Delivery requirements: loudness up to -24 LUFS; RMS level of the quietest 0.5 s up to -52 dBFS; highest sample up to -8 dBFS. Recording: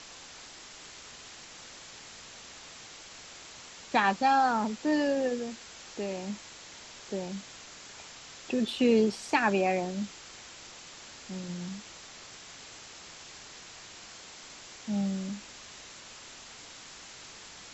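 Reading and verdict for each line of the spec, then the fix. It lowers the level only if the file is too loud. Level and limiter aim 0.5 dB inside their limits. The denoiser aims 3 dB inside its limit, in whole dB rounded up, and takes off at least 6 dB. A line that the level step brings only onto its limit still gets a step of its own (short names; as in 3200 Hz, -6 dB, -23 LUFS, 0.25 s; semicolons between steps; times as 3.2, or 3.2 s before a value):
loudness -30.0 LUFS: OK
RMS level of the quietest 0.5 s -48 dBFS: fail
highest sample -12.0 dBFS: OK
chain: denoiser 7 dB, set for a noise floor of -48 dBFS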